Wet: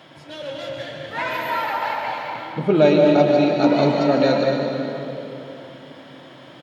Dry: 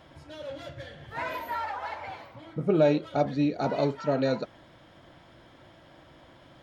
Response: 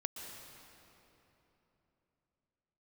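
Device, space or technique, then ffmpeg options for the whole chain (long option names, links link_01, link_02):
stadium PA: -filter_complex "[0:a]highpass=frequency=130:width=0.5412,highpass=frequency=130:width=1.3066,equalizer=frequency=3100:width_type=o:width=1.5:gain=5,aecho=1:1:148.7|224.5:0.282|0.316[link_01];[1:a]atrim=start_sample=2205[link_02];[link_01][link_02]afir=irnorm=-1:irlink=0,volume=8.5dB"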